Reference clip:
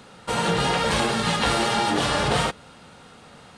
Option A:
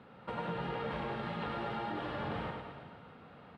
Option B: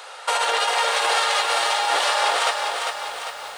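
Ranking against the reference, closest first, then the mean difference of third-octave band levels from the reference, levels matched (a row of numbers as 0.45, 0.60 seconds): A, B; 8.0, 12.5 decibels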